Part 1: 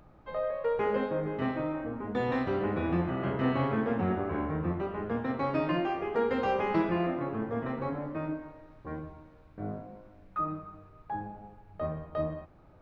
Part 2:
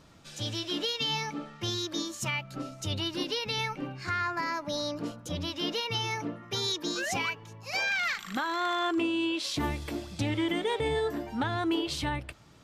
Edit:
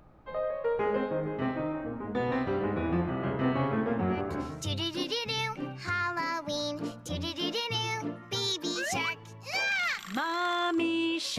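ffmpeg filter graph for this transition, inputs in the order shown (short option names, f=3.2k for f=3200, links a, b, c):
-filter_complex "[0:a]apad=whole_dur=11.38,atrim=end=11.38,atrim=end=4.68,asetpts=PTS-STARTPTS[a];[1:a]atrim=start=2.28:end=9.58,asetpts=PTS-STARTPTS[b];[a][b]acrossfade=d=0.6:c1=qsin:c2=qsin"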